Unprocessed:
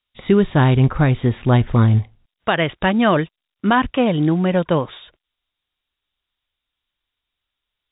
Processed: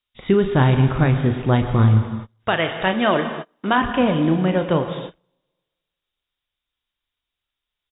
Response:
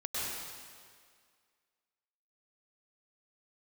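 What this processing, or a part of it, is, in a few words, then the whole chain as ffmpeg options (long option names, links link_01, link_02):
keyed gated reverb: -filter_complex "[0:a]asplit=2[link_01][link_02];[link_02]adelay=37,volume=-10dB[link_03];[link_01][link_03]amix=inputs=2:normalize=0,asplit=3[link_04][link_05][link_06];[1:a]atrim=start_sample=2205[link_07];[link_05][link_07]afir=irnorm=-1:irlink=0[link_08];[link_06]apad=whole_len=350601[link_09];[link_08][link_09]sidechaingate=range=-32dB:threshold=-42dB:ratio=16:detection=peak,volume=-11dB[link_10];[link_04][link_10]amix=inputs=2:normalize=0,asettb=1/sr,asplit=3[link_11][link_12][link_13];[link_11]atrim=end=2.574[link_14];[link_12]atrim=start=2.57:end=3.78,asetpts=PTS-STARTPTS,afade=type=in:duration=0.004:curve=qsin,afade=type=out:start_time=1.206:duration=0.004:curve=qsin,bass=frequency=250:gain=-7,treble=frequency=4000:gain=6[link_15];[link_13]atrim=start=3.776[link_16];[link_14][link_15]acrossfade=duration=0.004:curve1=hsin:curve2=qsin[link_17];[link_17][link_16]acrossfade=duration=0.004:curve1=qsin:curve2=hsin,volume=-3.5dB"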